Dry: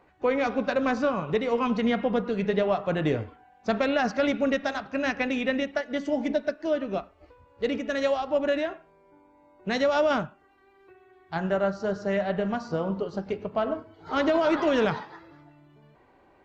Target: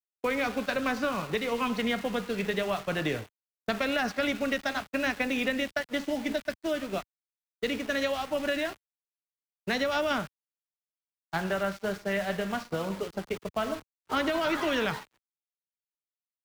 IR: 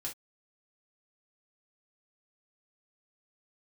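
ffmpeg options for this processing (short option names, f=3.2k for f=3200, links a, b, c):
-filter_complex "[0:a]aeval=exprs='val(0)*gte(abs(val(0)),0.0126)':c=same,acrossover=split=85|240|1400|5200[a][b][c][d][e];[a]acompressor=threshold=-55dB:ratio=4[f];[b]acompressor=threshold=-44dB:ratio=4[g];[c]acompressor=threshold=-36dB:ratio=4[h];[d]acompressor=threshold=-34dB:ratio=4[i];[e]acompressor=threshold=-52dB:ratio=4[j];[f][g][h][i][j]amix=inputs=5:normalize=0,agate=range=-33dB:threshold=-34dB:ratio=3:detection=peak,volume=4.5dB"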